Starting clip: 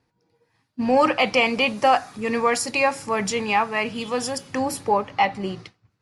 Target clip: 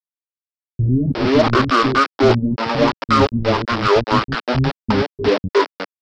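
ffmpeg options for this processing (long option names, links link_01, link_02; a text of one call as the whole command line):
ffmpeg -i in.wav -filter_complex "[0:a]afftdn=noise_reduction=25:noise_floor=-43,lowpass=frequency=3900:width=0.5412,lowpass=frequency=3900:width=1.3066,dynaudnorm=framelen=120:gausssize=11:maxgain=13.5dB,asetrate=22050,aresample=44100,atempo=2,aresample=11025,aeval=exprs='val(0)*gte(abs(val(0)),0.126)':channel_layout=same,aresample=44100,acontrast=39,asoftclip=type=tanh:threshold=-3dB,acrossover=split=280[link_01][link_02];[link_02]adelay=360[link_03];[link_01][link_03]amix=inputs=2:normalize=0,volume=-1dB" out.wav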